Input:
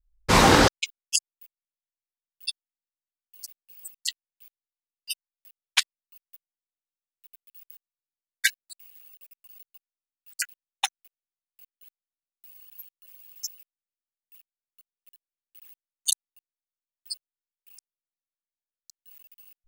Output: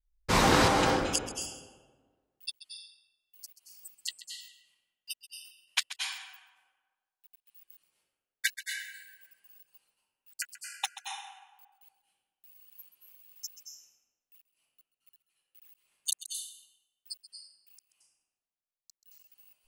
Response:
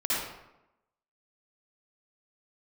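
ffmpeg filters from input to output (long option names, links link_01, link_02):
-filter_complex "[0:a]asplit=2[link_01][link_02];[1:a]atrim=start_sample=2205,asetrate=26019,aresample=44100,adelay=132[link_03];[link_02][link_03]afir=irnorm=-1:irlink=0,volume=-15.5dB[link_04];[link_01][link_04]amix=inputs=2:normalize=0,volume=-7dB"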